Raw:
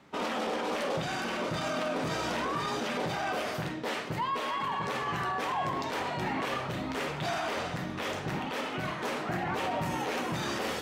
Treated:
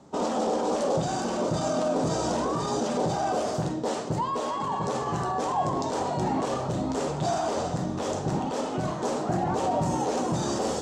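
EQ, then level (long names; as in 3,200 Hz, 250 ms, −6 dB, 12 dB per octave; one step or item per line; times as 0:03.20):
drawn EQ curve 790 Hz 0 dB, 2,200 Hz −18 dB, 7,500 Hz +4 dB, 13,000 Hz −19 dB
+7.0 dB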